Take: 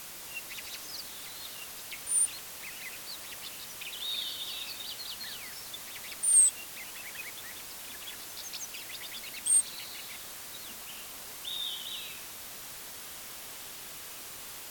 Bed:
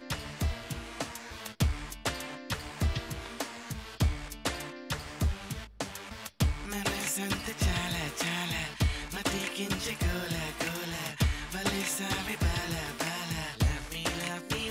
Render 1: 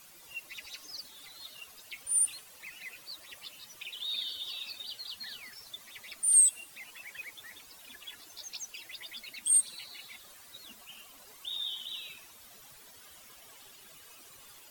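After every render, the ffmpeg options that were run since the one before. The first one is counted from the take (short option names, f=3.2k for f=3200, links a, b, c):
-af "afftdn=nr=13:nf=-44"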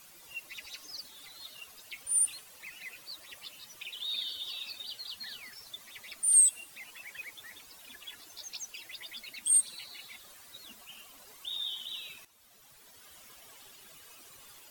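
-filter_complex "[0:a]asplit=2[a][b];[a]atrim=end=12.25,asetpts=PTS-STARTPTS,afade=t=out:st=12.246:d=0.004:c=hsin:silence=0.237137[c];[b]atrim=start=12.25,asetpts=PTS-STARTPTS,afade=t=in:d=0.96:silence=0.237137[d];[c][d]concat=n=2:v=0:a=1"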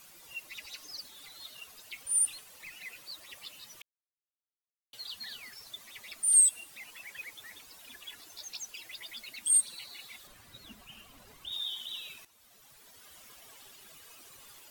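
-filter_complex "[0:a]asettb=1/sr,asplit=3[a][b][c];[a]atrim=end=2.314[d];[b]atrim=start=2.31:end=2.76,asetpts=PTS-STARTPTS,afade=t=in:d=0.004:c=qsin,afade=t=out:st=0.446:d=0.004:c=qsin,aeval=exprs='clip(val(0),-1,0.00708)':c=same[e];[c]atrim=start=2.756[f];[d][e]acrossfade=d=0.004:c1=hsin:c2=qsin[g];[g][f]acrossfade=d=0.004:c1=qsin:c2=hsin,asettb=1/sr,asplit=3[h][i][j];[h]atrim=end=10.274[k];[i]atrim=start=10.27:end=11.52,asetpts=PTS-STARTPTS,afade=t=in:d=0.004:c=qsin,afade=t=out:st=1.246:d=0.004:c=qsin,bass=f=250:g=12,treble=f=4k:g=-6[l];[j]atrim=start=11.516[m];[k][l]acrossfade=d=0.004:c1=hsin:c2=qsin[n];[n][m]acrossfade=d=0.004:c1=qsin:c2=hsin,asplit=3[o][p][q];[o]atrim=end=3.82,asetpts=PTS-STARTPTS,afade=t=out:st=3.816:d=0.004:c=hsin[r];[p]atrim=start=3.82:end=4.93,asetpts=PTS-STARTPTS,volume=0[s];[q]atrim=start=4.93,asetpts=PTS-STARTPTS,afade=t=in:d=0.004:c=hsin[t];[r][s][t]concat=n=3:v=0:a=1"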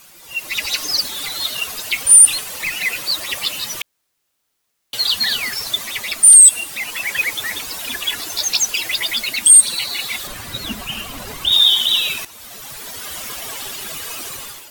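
-af "dynaudnorm=f=130:g=7:m=15dB,alimiter=level_in=9.5dB:limit=-1dB:release=50:level=0:latency=1"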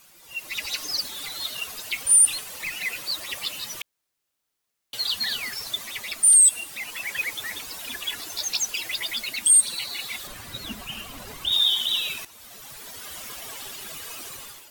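-af "volume=-8.5dB"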